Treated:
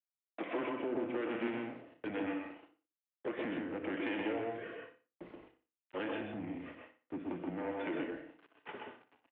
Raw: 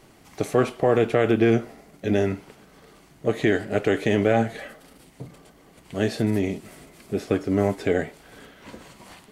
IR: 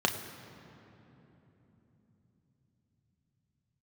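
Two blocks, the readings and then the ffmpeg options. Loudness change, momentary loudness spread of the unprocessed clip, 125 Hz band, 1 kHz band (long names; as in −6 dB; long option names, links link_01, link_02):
−16.5 dB, 15 LU, −25.0 dB, −13.0 dB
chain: -filter_complex "[0:a]aresample=8000,asoftclip=type=tanh:threshold=-15.5dB,aresample=44100,acrossover=split=500[link_01][link_02];[link_01]aeval=exprs='val(0)*(1-0.7/2+0.7/2*cos(2*PI*1.1*n/s))':channel_layout=same[link_03];[link_02]aeval=exprs='val(0)*(1-0.7/2-0.7/2*cos(2*PI*1.1*n/s))':channel_layout=same[link_04];[link_03][link_04]amix=inputs=2:normalize=0,agate=range=-25dB:threshold=-46dB:ratio=16:detection=peak,adynamicequalizer=threshold=0.00501:dfrequency=1400:dqfactor=1:tfrequency=1400:tqfactor=1:attack=5:release=100:ratio=0.375:range=2:mode=cutabove:tftype=bell,acrusher=bits=9:mix=0:aa=0.000001,aecho=1:1:60|120|180:0.251|0.0854|0.029,acompressor=threshold=-34dB:ratio=6,asoftclip=type=hard:threshold=-32dB,asplit=2[link_05][link_06];[1:a]atrim=start_sample=2205,afade=type=out:start_time=0.15:duration=0.01,atrim=end_sample=7056,adelay=126[link_07];[link_06][link_07]afir=irnorm=-1:irlink=0,volume=-12dB[link_08];[link_05][link_08]amix=inputs=2:normalize=0,highpass=frequency=370:width_type=q:width=0.5412,highpass=frequency=370:width_type=q:width=1.307,lowpass=frequency=3100:width_type=q:width=0.5176,lowpass=frequency=3100:width_type=q:width=0.7071,lowpass=frequency=3100:width_type=q:width=1.932,afreqshift=-110,volume=1.5dB"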